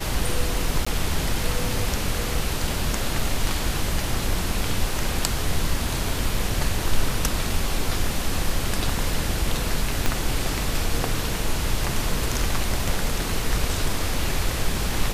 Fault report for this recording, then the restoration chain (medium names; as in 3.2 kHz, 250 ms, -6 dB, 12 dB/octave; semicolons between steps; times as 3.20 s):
0.85–0.86 s: dropout 15 ms
10.06 s: pop -6 dBFS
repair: de-click; interpolate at 0.85 s, 15 ms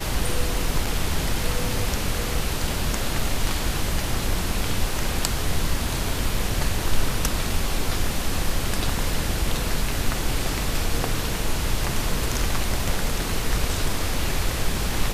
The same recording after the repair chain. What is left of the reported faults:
10.06 s: pop